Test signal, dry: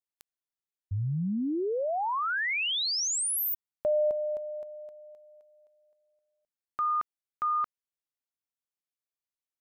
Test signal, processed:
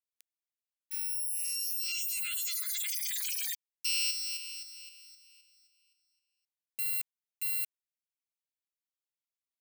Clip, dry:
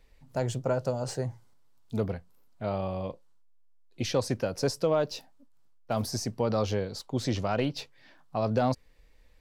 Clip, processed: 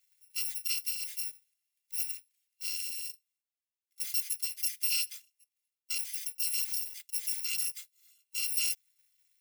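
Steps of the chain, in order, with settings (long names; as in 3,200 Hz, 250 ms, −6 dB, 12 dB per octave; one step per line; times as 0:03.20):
samples in bit-reversed order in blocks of 256 samples
Chebyshev high-pass filter 2,100 Hz, order 3
level −4.5 dB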